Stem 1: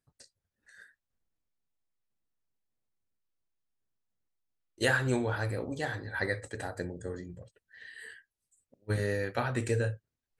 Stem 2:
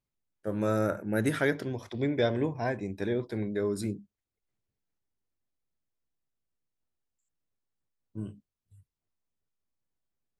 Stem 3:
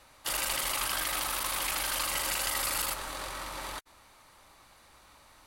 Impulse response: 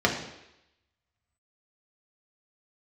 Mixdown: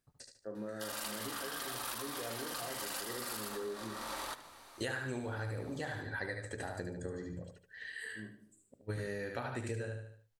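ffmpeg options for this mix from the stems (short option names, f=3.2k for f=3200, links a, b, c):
-filter_complex "[0:a]volume=2dB,asplit=2[a][b];[b]volume=-5.5dB[c];[1:a]lowpass=2.2k,lowshelf=f=250:g=-9,alimiter=level_in=0.5dB:limit=-24dB:level=0:latency=1,volume=-0.5dB,volume=-12.5dB,asplit=3[d][e][f];[e]volume=-13.5dB[g];[2:a]lowshelf=f=150:g=-9.5,adelay=550,volume=1dB,asplit=3[h][i][j];[i]volume=-23.5dB[k];[j]volume=-16dB[l];[f]apad=whole_len=265112[m];[h][m]sidechaincompress=threshold=-54dB:ratio=8:attack=16:release=300[n];[3:a]atrim=start_sample=2205[o];[g][k]amix=inputs=2:normalize=0[p];[p][o]afir=irnorm=-1:irlink=0[q];[c][l]amix=inputs=2:normalize=0,aecho=0:1:74|148|222|296|370:1|0.33|0.109|0.0359|0.0119[r];[a][d][n][q][r]amix=inputs=5:normalize=0,acompressor=threshold=-38dB:ratio=4"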